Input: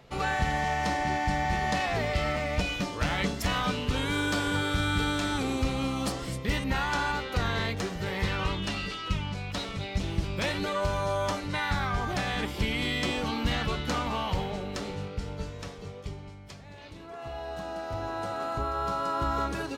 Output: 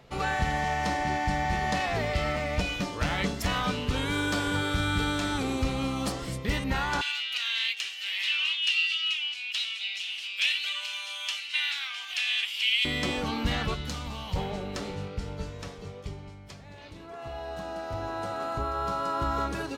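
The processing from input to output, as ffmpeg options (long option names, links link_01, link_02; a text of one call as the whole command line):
ffmpeg -i in.wav -filter_complex "[0:a]asettb=1/sr,asplit=3[link_01][link_02][link_03];[link_01]atrim=end=7.014[link_04];[link_02]atrim=start=7.01:end=12.85,asetpts=PTS-STARTPTS,afade=type=in:duration=0.004:curve=qsin,afade=type=out:start_time=5.836:duration=0.004:curve=qsin,highpass=frequency=2800:width_type=q:width=5[link_05];[link_03]atrim=start=12.846[link_06];[link_04][link_05]acrossfade=duration=0.004:curve1=hsin:curve2=qsin[link_07];[link_07][link_06]acrossfade=duration=0.004:curve1=qsin:curve2=hsin,asettb=1/sr,asplit=3[link_08][link_09][link_10];[link_08]atrim=end=13.744[link_11];[link_09]atrim=start=13.74:end=14.36,asetpts=PTS-STARTPTS,afade=type=in:duration=0.004:curve=qsin,afade=type=out:start_time=0.616:duration=0.004:curve=qsin,acrossover=split=170|3000[link_12][link_13][link_14];[link_13]acompressor=threshold=-39dB:ratio=6:attack=3.2:release=140:knee=2.83:detection=peak[link_15];[link_12][link_15][link_14]amix=inputs=3:normalize=0[link_16];[link_10]atrim=start=14.356[link_17];[link_11][link_16]acrossfade=duration=0.004:curve1=hsin:curve2=qsin[link_18];[link_18][link_17]acrossfade=duration=0.004:curve1=qsin:curve2=hsin" out.wav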